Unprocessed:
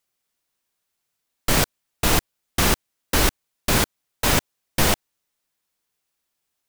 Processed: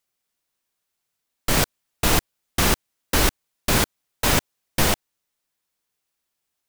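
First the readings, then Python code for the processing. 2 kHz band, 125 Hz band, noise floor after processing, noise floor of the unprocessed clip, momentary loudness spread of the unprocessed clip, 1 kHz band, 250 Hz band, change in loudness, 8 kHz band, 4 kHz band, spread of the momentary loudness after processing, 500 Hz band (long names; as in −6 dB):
−0.5 dB, −0.5 dB, −80 dBFS, −79 dBFS, 7 LU, −0.5 dB, −0.5 dB, 0.0 dB, −0.5 dB, −0.5 dB, 8 LU, −0.5 dB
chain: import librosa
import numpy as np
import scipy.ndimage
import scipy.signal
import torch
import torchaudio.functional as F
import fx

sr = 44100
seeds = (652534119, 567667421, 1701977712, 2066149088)

y = fx.rider(x, sr, range_db=3, speed_s=0.5)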